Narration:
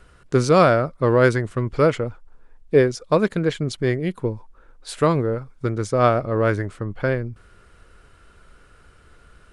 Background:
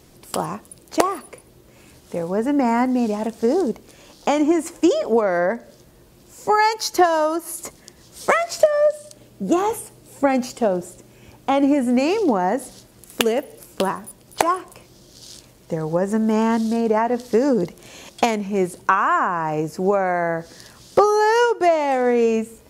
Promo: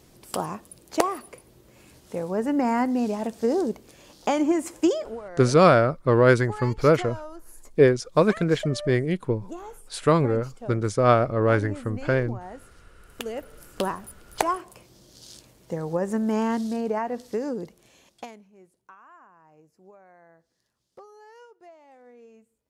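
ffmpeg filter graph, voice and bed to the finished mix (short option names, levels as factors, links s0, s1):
-filter_complex "[0:a]adelay=5050,volume=0.891[s0];[1:a]volume=3.16,afade=t=out:st=4.87:d=0.29:silence=0.16788,afade=t=in:st=13.11:d=0.69:silence=0.188365,afade=t=out:st=16.34:d=2.18:silence=0.0421697[s1];[s0][s1]amix=inputs=2:normalize=0"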